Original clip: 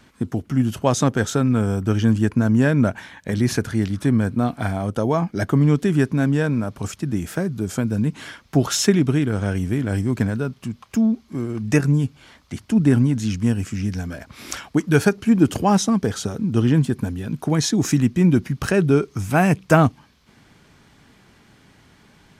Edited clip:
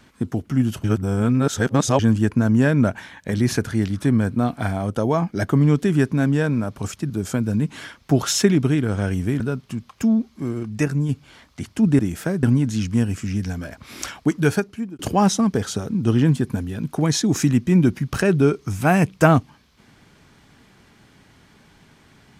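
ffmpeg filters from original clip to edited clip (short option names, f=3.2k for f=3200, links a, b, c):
-filter_complex "[0:a]asplit=10[a][b][c][d][e][f][g][h][i][j];[a]atrim=end=0.842[k];[b]atrim=start=0.838:end=1.992,asetpts=PTS-STARTPTS,areverse[l];[c]atrim=start=1.988:end=7.102[m];[d]atrim=start=7.538:end=9.842[n];[e]atrim=start=10.328:end=11.562[o];[f]atrim=start=11.558:end=12.022,asetpts=PTS-STARTPTS,volume=-4dB[p];[g]atrim=start=12.018:end=12.922[q];[h]atrim=start=7.098:end=7.542[r];[i]atrim=start=12.918:end=15.48,asetpts=PTS-STARTPTS,afade=t=out:st=1.902:d=0.66[s];[j]atrim=start=15.48,asetpts=PTS-STARTPTS,afade=t=in:d=0.004:c=hsin[t];[k][l]acrossfade=d=0.004:c1=hsin:c2=hsin[u];[u][m]acrossfade=d=0.004:c1=hsin:c2=hsin[v];[v][n]acrossfade=d=0.004:c1=hsin:c2=hsin[w];[w][o]acrossfade=d=0.004:c1=hsin:c2=hsin[x];[x][p]acrossfade=d=0.004:c1=hsin:c2=hsin[y];[y][q]acrossfade=d=0.004:c1=hsin:c2=hsin[z];[z][r]acrossfade=d=0.004:c1=hsin:c2=hsin[aa];[s][t]concat=n=2:v=0:a=1[ab];[aa][ab]acrossfade=d=0.004:c1=hsin:c2=hsin"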